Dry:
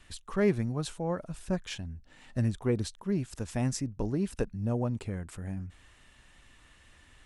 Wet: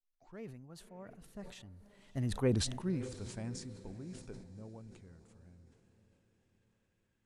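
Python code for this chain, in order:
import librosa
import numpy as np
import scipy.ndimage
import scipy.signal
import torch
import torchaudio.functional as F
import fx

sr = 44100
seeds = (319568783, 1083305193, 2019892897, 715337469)

y = fx.tape_start_head(x, sr, length_s=0.44)
y = fx.doppler_pass(y, sr, speed_mps=31, closest_m=6.5, pass_at_s=2.59)
y = fx.echo_diffused(y, sr, ms=579, feedback_pct=48, wet_db=-16.0)
y = fx.sustainer(y, sr, db_per_s=66.0)
y = F.gain(torch.from_numpy(y), -1.0).numpy()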